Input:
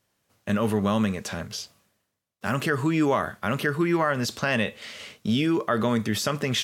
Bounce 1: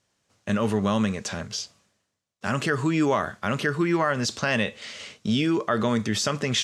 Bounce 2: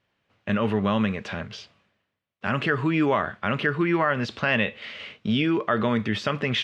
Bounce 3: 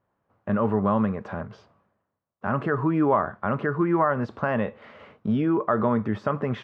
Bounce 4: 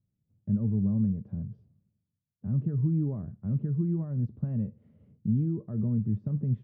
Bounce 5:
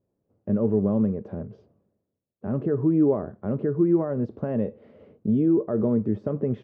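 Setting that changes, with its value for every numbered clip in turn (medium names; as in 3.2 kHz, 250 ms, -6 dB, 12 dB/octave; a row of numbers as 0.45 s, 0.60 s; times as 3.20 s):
resonant low-pass, frequency: 7.1 kHz, 2.8 kHz, 1.1 kHz, 150 Hz, 430 Hz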